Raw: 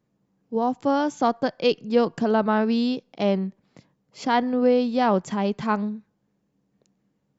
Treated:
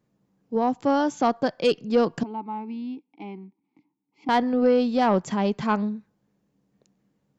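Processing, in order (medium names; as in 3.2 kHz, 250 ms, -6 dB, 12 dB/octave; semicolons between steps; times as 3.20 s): 2.23–4.29 s: vowel filter u; saturation -11.5 dBFS, distortion -21 dB; trim +1 dB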